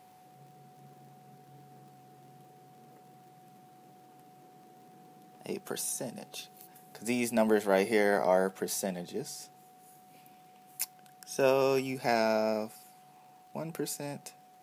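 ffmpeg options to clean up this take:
ffmpeg -i in.wav -af "adeclick=threshold=4,bandreject=frequency=740:width=30" out.wav

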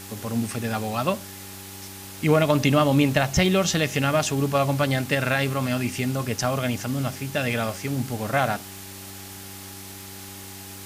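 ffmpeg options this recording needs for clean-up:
ffmpeg -i in.wav -af "adeclick=threshold=4,bandreject=frequency=97:width_type=h:width=4,bandreject=frequency=194:width_type=h:width=4,bandreject=frequency=291:width_type=h:width=4,bandreject=frequency=388:width_type=h:width=4,bandreject=frequency=820:width=30,afwtdn=0.01" out.wav

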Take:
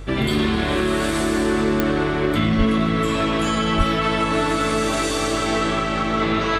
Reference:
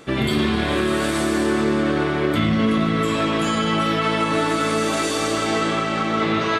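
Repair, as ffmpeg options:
ffmpeg -i in.wav -filter_complex "[0:a]adeclick=threshold=4,bandreject=frequency=46.8:width_type=h:width=4,bandreject=frequency=93.6:width_type=h:width=4,bandreject=frequency=140.4:width_type=h:width=4,asplit=3[link_01][link_02][link_03];[link_01]afade=type=out:start_time=2.57:duration=0.02[link_04];[link_02]highpass=frequency=140:width=0.5412,highpass=frequency=140:width=1.3066,afade=type=in:start_time=2.57:duration=0.02,afade=type=out:start_time=2.69:duration=0.02[link_05];[link_03]afade=type=in:start_time=2.69:duration=0.02[link_06];[link_04][link_05][link_06]amix=inputs=3:normalize=0,asplit=3[link_07][link_08][link_09];[link_07]afade=type=out:start_time=3.77:duration=0.02[link_10];[link_08]highpass=frequency=140:width=0.5412,highpass=frequency=140:width=1.3066,afade=type=in:start_time=3.77:duration=0.02,afade=type=out:start_time=3.89:duration=0.02[link_11];[link_09]afade=type=in:start_time=3.89:duration=0.02[link_12];[link_10][link_11][link_12]amix=inputs=3:normalize=0" out.wav

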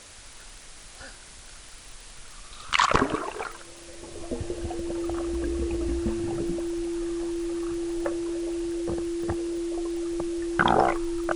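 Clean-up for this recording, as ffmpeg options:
ffmpeg -i in.wav -af "adeclick=threshold=4,bandreject=frequency=340:width=30,afwtdn=0.0056" out.wav

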